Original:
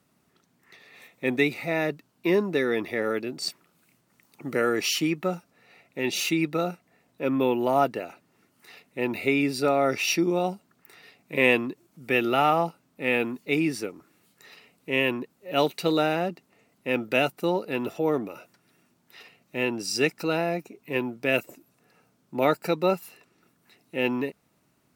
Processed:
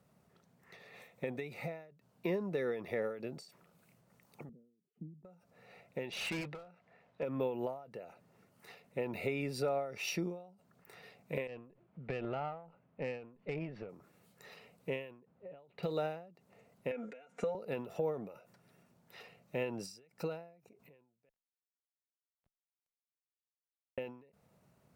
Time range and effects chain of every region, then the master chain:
4.49–5.25 s: Butterworth band-pass 200 Hz, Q 1.6 + distance through air 450 m
6.10–7.23 s: low-pass 3.1 kHz + tilt shelf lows -5.5 dB, about 710 Hz + overload inside the chain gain 28 dB
11.47–13.89 s: low-pass 2.9 kHz 24 dB/octave + compression 8:1, threshold -27 dBFS + valve stage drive 24 dB, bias 0.5
15.20–15.83 s: compression 3:1, threshold -23 dBFS + distance through air 440 m
16.91–17.55 s: cabinet simulation 210–8300 Hz, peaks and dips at 260 Hz +4 dB, 520 Hz +5 dB, 1.5 kHz +10 dB, 2.2 kHz +9 dB, 4.5 kHz -6 dB, 6.9 kHz +8 dB + comb 4.3 ms, depth 97% + compression 12:1, threshold -25 dBFS
21.29–23.98 s: sorted samples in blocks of 128 samples + frequency weighting A + Schmitt trigger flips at -18 dBFS
whole clip: FFT filter 190 Hz 0 dB, 300 Hz -11 dB, 500 Hz +2 dB, 1.1 kHz -5 dB, 3.3 kHz -9 dB; compression 3:1, threshold -37 dBFS; endings held to a fixed fall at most 100 dB/s; trim +2 dB

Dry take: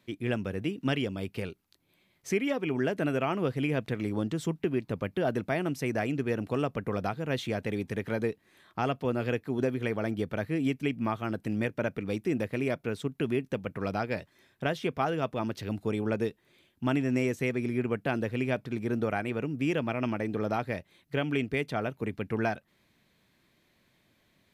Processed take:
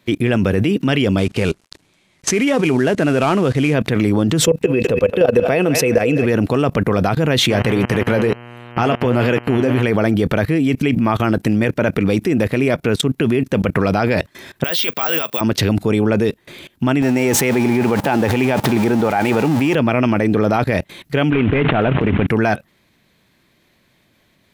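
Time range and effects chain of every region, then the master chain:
1.18–3.74 s: CVSD coder 64 kbps + low-pass 9.6 kHz
4.42–6.26 s: small resonant body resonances 490/2600 Hz, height 18 dB, ringing for 75 ms + thinning echo 206 ms, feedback 52%, high-pass 760 Hz, level -15 dB
7.49–9.82 s: flange 1.4 Hz, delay 4.6 ms, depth 7.3 ms, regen +69% + mains buzz 120 Hz, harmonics 26, -47 dBFS
14.64–15.41 s: high-pass 1.1 kHz 6 dB/octave + peaking EQ 4 kHz +8 dB 1.5 oct + careless resampling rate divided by 2×, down filtered, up zero stuff
17.02–19.75 s: jump at every zero crossing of -38.5 dBFS + high-pass 150 Hz 6 dB/octave + peaking EQ 840 Hz +12.5 dB 0.24 oct
21.30–22.27 s: CVSD coder 16 kbps + transient shaper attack -11 dB, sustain -7 dB + decay stretcher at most 28 dB/s
whole clip: level held to a coarse grid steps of 22 dB; loudness maximiser +33 dB; trim -4 dB

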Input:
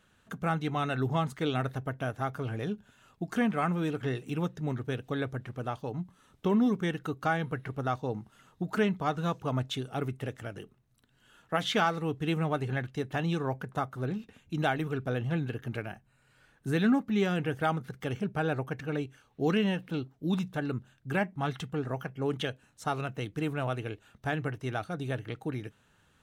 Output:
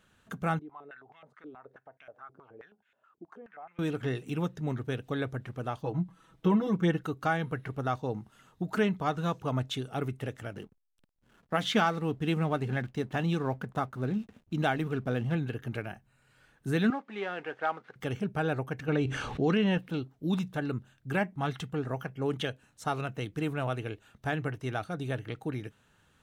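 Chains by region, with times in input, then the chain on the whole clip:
0.59–3.79 s: compression 4:1, threshold -37 dBFS + step-sequenced band-pass 9.4 Hz 340–2200 Hz
5.83–7.01 s: treble shelf 3.5 kHz -7.5 dB + comb 6.1 ms, depth 93%
10.53–15.35 s: peaking EQ 220 Hz +6 dB 0.39 oct + hysteresis with a dead band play -52.5 dBFS
16.90–17.96 s: CVSD coder 64 kbps + band-pass 540–2400 Hz
18.88–19.78 s: distance through air 71 m + level flattener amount 70%
whole clip: none

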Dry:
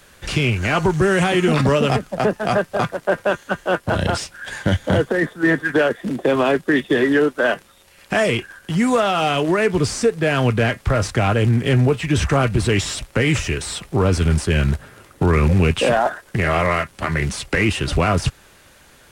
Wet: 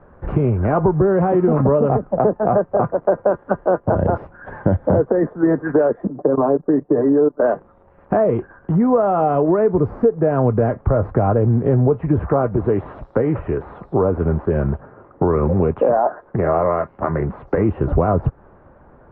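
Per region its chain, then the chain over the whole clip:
6.07–7.42 s: level held to a coarse grid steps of 19 dB + low-pass 1.4 kHz + comb 6.8 ms, depth 63%
12.19–17.58 s: bass shelf 180 Hz -9.5 dB + bands offset in time lows, highs 160 ms, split 4.6 kHz
whole clip: low-pass 1.1 kHz 24 dB/octave; dynamic bell 500 Hz, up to +4 dB, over -30 dBFS, Q 1.1; compression 2.5:1, threshold -21 dBFS; trim +6 dB

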